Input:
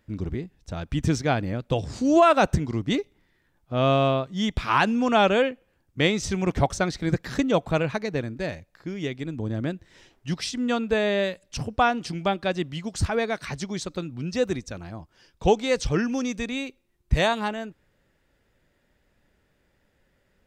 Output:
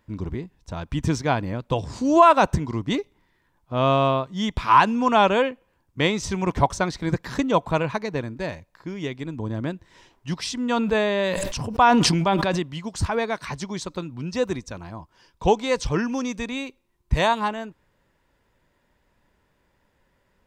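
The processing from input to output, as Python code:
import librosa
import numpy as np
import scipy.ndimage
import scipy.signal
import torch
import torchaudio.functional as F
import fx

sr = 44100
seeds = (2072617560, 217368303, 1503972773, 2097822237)

y = fx.peak_eq(x, sr, hz=990.0, db=11.5, octaves=0.3)
y = fx.sustainer(y, sr, db_per_s=22.0, at=(10.38, 12.6))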